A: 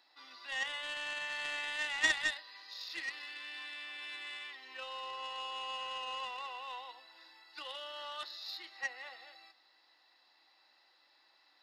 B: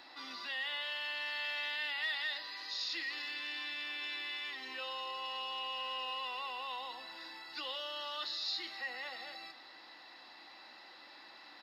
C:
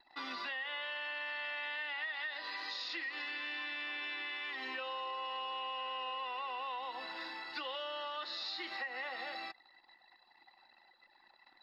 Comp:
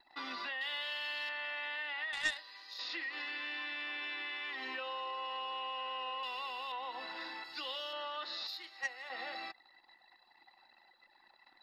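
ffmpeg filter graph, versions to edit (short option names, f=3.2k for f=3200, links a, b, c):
-filter_complex "[1:a]asplit=3[a][b][c];[0:a]asplit=2[d][e];[2:a]asplit=6[f][g][h][i][j][k];[f]atrim=end=0.612[l];[a]atrim=start=0.608:end=1.292[m];[g]atrim=start=1.288:end=2.132[n];[d]atrim=start=2.128:end=2.792[o];[h]atrim=start=2.788:end=6.232[p];[b]atrim=start=6.228:end=6.722[q];[i]atrim=start=6.718:end=7.442[r];[c]atrim=start=7.438:end=7.932[s];[j]atrim=start=7.928:end=8.472[t];[e]atrim=start=8.468:end=9.102[u];[k]atrim=start=9.098[v];[l][m]acrossfade=d=0.004:c1=hsin:c2=hsin[w];[w][n]acrossfade=d=0.004:c1=hsin:c2=hsin[x];[x][o]acrossfade=d=0.004:c1=hsin:c2=hsin[y];[y][p]acrossfade=d=0.004:c1=hsin:c2=hsin[z];[z][q]acrossfade=d=0.004:c1=hsin:c2=hsin[aa];[aa][r]acrossfade=d=0.004:c1=hsin:c2=hsin[ab];[ab][s]acrossfade=d=0.004:c1=hsin:c2=hsin[ac];[ac][t]acrossfade=d=0.004:c1=hsin:c2=hsin[ad];[ad][u]acrossfade=d=0.004:c1=hsin:c2=hsin[ae];[ae][v]acrossfade=d=0.004:c1=hsin:c2=hsin"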